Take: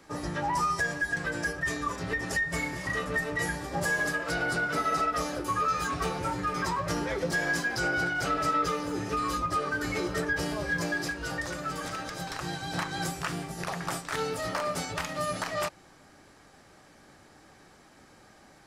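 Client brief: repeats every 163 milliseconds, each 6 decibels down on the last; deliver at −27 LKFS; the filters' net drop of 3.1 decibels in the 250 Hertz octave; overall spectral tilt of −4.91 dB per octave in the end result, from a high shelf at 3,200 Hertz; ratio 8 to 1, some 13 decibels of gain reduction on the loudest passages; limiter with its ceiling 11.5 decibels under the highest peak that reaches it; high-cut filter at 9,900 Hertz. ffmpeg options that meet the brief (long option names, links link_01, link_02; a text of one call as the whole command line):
ffmpeg -i in.wav -af "lowpass=9900,equalizer=frequency=250:width_type=o:gain=-4.5,highshelf=frequency=3200:gain=-9,acompressor=threshold=-40dB:ratio=8,alimiter=level_in=14dB:limit=-24dB:level=0:latency=1,volume=-14dB,aecho=1:1:163|326|489|652|815|978:0.501|0.251|0.125|0.0626|0.0313|0.0157,volume=17.5dB" out.wav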